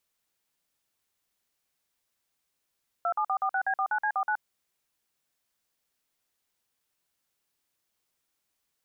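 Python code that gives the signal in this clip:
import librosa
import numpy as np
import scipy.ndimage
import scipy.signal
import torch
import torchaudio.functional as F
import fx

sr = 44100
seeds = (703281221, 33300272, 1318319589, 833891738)

y = fx.dtmf(sr, digits='27446B49C49', tone_ms=74, gap_ms=49, level_db=-27.0)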